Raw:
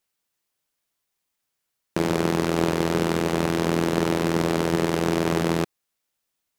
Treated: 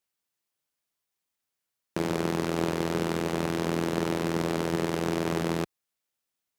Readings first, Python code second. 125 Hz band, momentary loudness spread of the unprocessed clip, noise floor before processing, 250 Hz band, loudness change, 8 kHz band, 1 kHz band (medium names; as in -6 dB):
-5.5 dB, 2 LU, -80 dBFS, -5.5 dB, -5.5 dB, -5.5 dB, -5.5 dB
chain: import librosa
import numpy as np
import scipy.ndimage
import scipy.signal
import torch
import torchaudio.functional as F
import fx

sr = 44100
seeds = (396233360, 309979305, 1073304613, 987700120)

y = scipy.signal.sosfilt(scipy.signal.butter(2, 43.0, 'highpass', fs=sr, output='sos'), x)
y = F.gain(torch.from_numpy(y), -5.5).numpy()